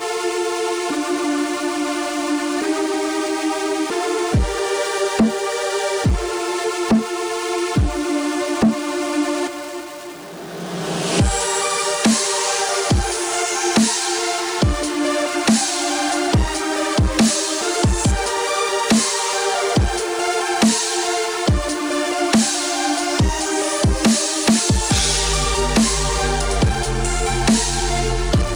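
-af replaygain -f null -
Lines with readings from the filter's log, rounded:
track_gain = +0.4 dB
track_peak = 0.341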